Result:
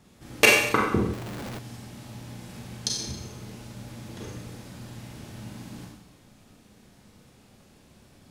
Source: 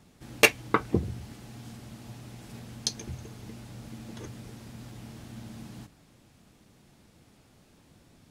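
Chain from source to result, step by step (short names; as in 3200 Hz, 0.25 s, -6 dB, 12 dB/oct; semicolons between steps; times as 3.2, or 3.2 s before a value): Schroeder reverb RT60 0.83 s, combs from 30 ms, DRR -2 dB; 1.13–1.59 Schmitt trigger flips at -49 dBFS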